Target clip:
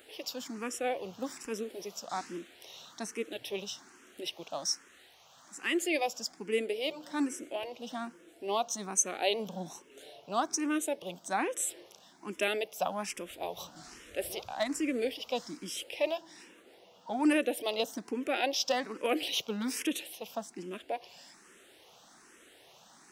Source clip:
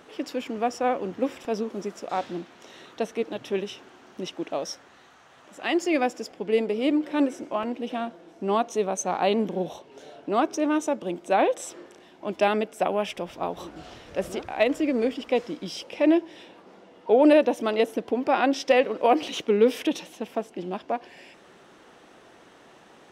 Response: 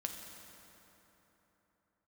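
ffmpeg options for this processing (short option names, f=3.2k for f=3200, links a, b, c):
-filter_complex "[0:a]crystalizer=i=5:c=0,asplit=2[a][b];[b]afreqshift=1.2[c];[a][c]amix=inputs=2:normalize=1,volume=-7dB"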